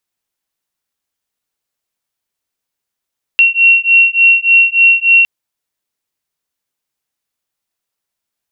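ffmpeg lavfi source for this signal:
ffmpeg -f lavfi -i "aevalsrc='0.355*(sin(2*PI*2730*t)+sin(2*PI*2733.4*t))':duration=1.86:sample_rate=44100" out.wav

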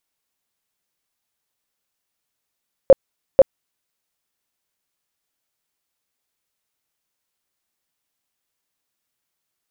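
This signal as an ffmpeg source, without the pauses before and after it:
ffmpeg -f lavfi -i "aevalsrc='0.668*sin(2*PI*539*mod(t,0.49))*lt(mod(t,0.49),15/539)':duration=0.98:sample_rate=44100" out.wav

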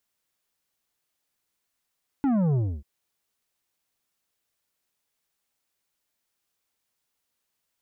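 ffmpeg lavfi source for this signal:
ffmpeg -f lavfi -i "aevalsrc='0.0891*clip((0.59-t)/0.28,0,1)*tanh(2.82*sin(2*PI*290*0.59/log(65/290)*(exp(log(65/290)*t/0.59)-1)))/tanh(2.82)':duration=0.59:sample_rate=44100" out.wav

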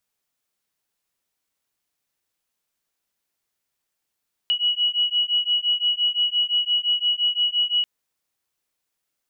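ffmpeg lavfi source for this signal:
ffmpeg -f lavfi -i "aevalsrc='0.0794*(sin(2*PI*2920*t)+sin(2*PI*2925.8*t))':duration=3.34:sample_rate=44100" out.wav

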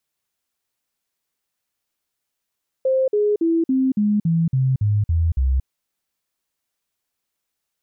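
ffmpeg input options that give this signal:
ffmpeg -f lavfi -i "aevalsrc='0.178*clip(min(mod(t,0.28),0.23-mod(t,0.28))/0.005,0,1)*sin(2*PI*525*pow(2,-floor(t/0.28)/3)*mod(t,0.28))':duration=2.8:sample_rate=44100" out.wav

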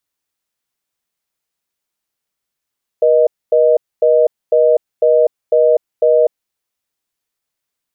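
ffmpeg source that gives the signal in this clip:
ffmpeg -f lavfi -i "aevalsrc='0.299*(sin(2*PI*480*t)+sin(2*PI*620*t))*clip(min(mod(t,0.5),0.25-mod(t,0.5))/0.005,0,1)':duration=3.44:sample_rate=44100" out.wav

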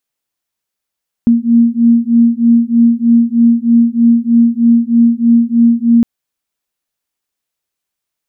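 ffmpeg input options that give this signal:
ffmpeg -f lavfi -i "aevalsrc='0.335*(sin(2*PI*232*t)+sin(2*PI*235.2*t))':duration=4.76:sample_rate=44100" out.wav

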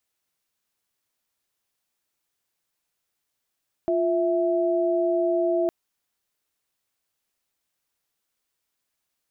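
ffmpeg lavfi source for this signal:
ffmpeg -f lavfi -i "aevalsrc='0.075*(sin(2*PI*349.23*t)+sin(2*PI*659.26*t))':duration=1.81:sample_rate=44100" out.wav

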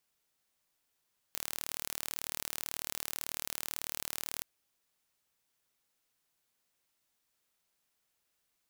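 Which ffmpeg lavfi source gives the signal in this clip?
ffmpeg -f lavfi -i "aevalsrc='0.335*eq(mod(n,1157),0)':duration=3.08:sample_rate=44100" out.wav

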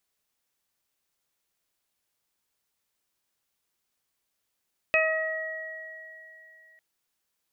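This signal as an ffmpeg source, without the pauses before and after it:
ffmpeg -f lavfi -i "aevalsrc='0.0708*pow(10,-3*t/2.43)*sin(2*PI*636*t)+0.0282*pow(10,-3*t/1.36)*sin(2*PI*1272*t)+0.0631*pow(10,-3*t/3.55)*sin(2*PI*1908*t)+0.112*pow(10,-3*t/0.46)*sin(2*PI*2544*t)':duration=1.85:sample_rate=44100" out.wav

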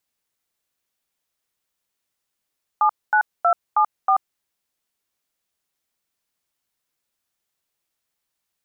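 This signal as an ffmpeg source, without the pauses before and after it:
ffmpeg -f lavfi -i "aevalsrc='0.158*clip(min(mod(t,0.318),0.084-mod(t,0.318))/0.002,0,1)*(eq(floor(t/0.318),0)*(sin(2*PI*852*mod(t,0.318))+sin(2*PI*1209*mod(t,0.318)))+eq(floor(t/0.318),1)*(sin(2*PI*852*mod(t,0.318))+sin(2*PI*1477*mod(t,0.318)))+eq(floor(t/0.318),2)*(sin(2*PI*697*mod(t,0.318))+sin(2*PI*1336*mod(t,0.318)))+eq(floor(t/0.318),3)*(sin(2*PI*852*mod(t,0.318))+sin(2*PI*1209*mod(t,0.318)))+eq(floor(t/0.318),4)*(sin(2*PI*770*mod(t,0.318))+sin(2*PI*1209*mod(t,0.318))))':duration=1.59:sample_rate=44100" out.wav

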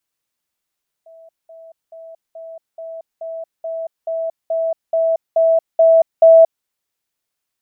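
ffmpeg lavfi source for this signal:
ffmpeg -f lavfi -i "aevalsrc='pow(10,(-40+3*floor(t/0.43))/20)*sin(2*PI*655*t)*clip(min(mod(t,0.43),0.23-mod(t,0.43))/0.005,0,1)':duration=5.59:sample_rate=44100" out.wav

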